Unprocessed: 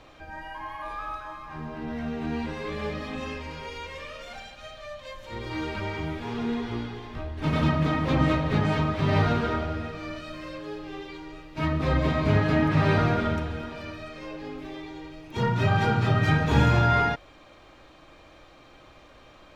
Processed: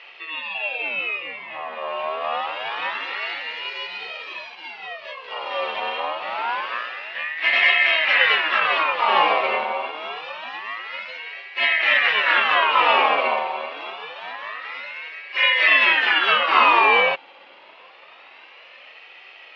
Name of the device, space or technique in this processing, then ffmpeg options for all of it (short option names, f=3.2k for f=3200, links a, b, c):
voice changer toy: -af "aeval=exprs='val(0)*sin(2*PI*1400*n/s+1400*0.4/0.26*sin(2*PI*0.26*n/s))':c=same,highpass=530,equalizer=f=540:t=q:w=4:g=5,equalizer=f=1.5k:t=q:w=4:g=-8,equalizer=f=2.7k:t=q:w=4:g=9,lowpass=f=3.8k:w=0.5412,lowpass=f=3.8k:w=1.3066,volume=8.5dB"